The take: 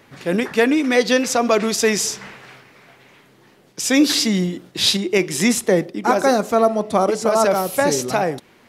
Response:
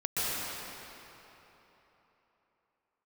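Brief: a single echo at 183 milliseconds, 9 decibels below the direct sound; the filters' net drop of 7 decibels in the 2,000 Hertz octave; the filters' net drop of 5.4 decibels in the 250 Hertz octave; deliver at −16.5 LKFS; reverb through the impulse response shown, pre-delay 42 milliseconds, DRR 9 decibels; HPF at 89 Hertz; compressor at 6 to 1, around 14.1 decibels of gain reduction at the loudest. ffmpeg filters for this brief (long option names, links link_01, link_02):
-filter_complex "[0:a]highpass=89,equalizer=frequency=250:width_type=o:gain=-6.5,equalizer=frequency=2000:width_type=o:gain=-8.5,acompressor=threshold=-29dB:ratio=6,aecho=1:1:183:0.355,asplit=2[link_01][link_02];[1:a]atrim=start_sample=2205,adelay=42[link_03];[link_02][link_03]afir=irnorm=-1:irlink=0,volume=-19dB[link_04];[link_01][link_04]amix=inputs=2:normalize=0,volume=14.5dB"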